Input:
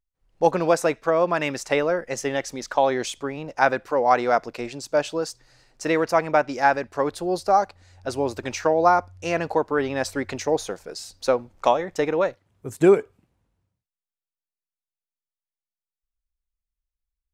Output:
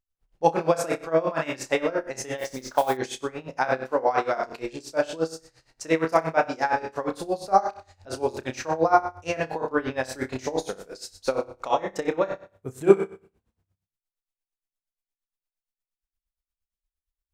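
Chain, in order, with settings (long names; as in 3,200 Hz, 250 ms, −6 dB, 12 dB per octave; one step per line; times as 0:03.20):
on a send: flutter between parallel walls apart 5.3 metres, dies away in 0.44 s
0:02.38–0:02.97: on the sum: noise that follows the level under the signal 20 dB
tremolo with a sine in dB 8.6 Hz, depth 18 dB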